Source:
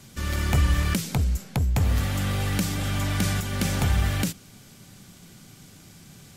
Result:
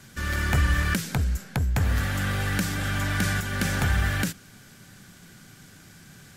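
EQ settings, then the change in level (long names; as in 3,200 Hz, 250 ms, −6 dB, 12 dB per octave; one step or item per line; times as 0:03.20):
parametric band 1,600 Hz +10.5 dB 0.52 octaves
−1.5 dB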